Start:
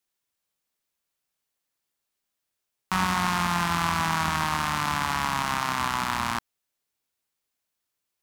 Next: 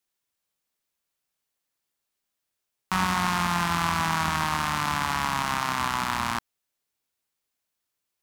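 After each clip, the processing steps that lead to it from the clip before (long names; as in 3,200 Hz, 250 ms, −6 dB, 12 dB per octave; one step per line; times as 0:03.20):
no processing that can be heard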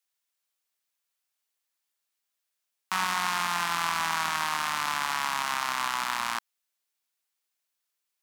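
high-pass filter 1,000 Hz 6 dB per octave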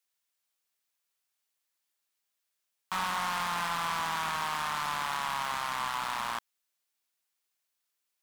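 gain into a clipping stage and back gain 26 dB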